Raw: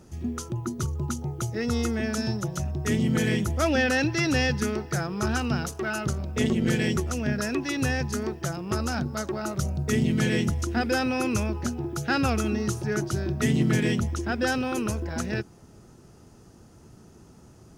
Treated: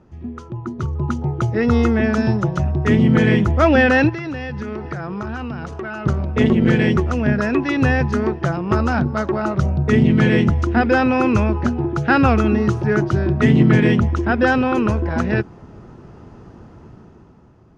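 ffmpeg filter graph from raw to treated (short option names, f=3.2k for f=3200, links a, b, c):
-filter_complex "[0:a]asettb=1/sr,asplit=3[a][b][c];[a]atrim=end=4.094[d];[b]atrim=start=4.09:end=6.06,asetpts=PTS-STARTPTS,afade=t=in:d=0.004:c=qsin,afade=t=out:st=1.966:d=0.004:c=qsin,lowpass=9.9k,acompressor=threshold=-33dB:ratio=12:attack=3.2:release=140:knee=1:detection=peak[e];[c]atrim=start=6.056[f];[d][e]acrossfade=d=0.004:c1=hsin:c2=qsin[g];[g][f]acrossfade=d=0.004:c1=qsin:c2=hsin,lowpass=2.4k,equalizer=f=1k:w=4.1:g=3.5,dynaudnorm=f=150:g=13:m=11.5dB"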